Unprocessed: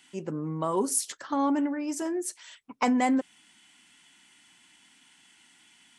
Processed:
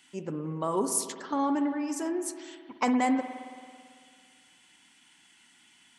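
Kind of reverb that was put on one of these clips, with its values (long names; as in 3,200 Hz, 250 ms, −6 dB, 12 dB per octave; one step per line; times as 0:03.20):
spring reverb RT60 2.1 s, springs 55 ms, chirp 40 ms, DRR 8 dB
level −1.5 dB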